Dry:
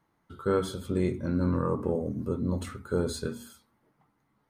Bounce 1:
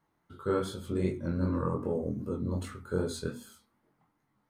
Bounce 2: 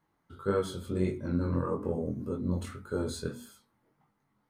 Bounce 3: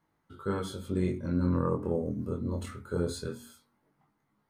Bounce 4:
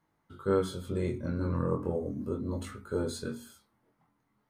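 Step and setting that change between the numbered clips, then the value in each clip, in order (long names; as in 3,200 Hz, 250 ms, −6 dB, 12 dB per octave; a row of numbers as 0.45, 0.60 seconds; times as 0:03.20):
chorus effect, speed: 2.6, 1.7, 0.21, 0.37 Hertz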